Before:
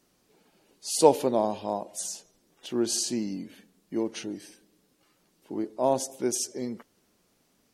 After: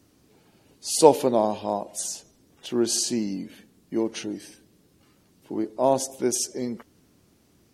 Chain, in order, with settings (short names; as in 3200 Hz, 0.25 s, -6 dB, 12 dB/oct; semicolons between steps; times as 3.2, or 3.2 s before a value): band noise 60–350 Hz -66 dBFS; gain +3.5 dB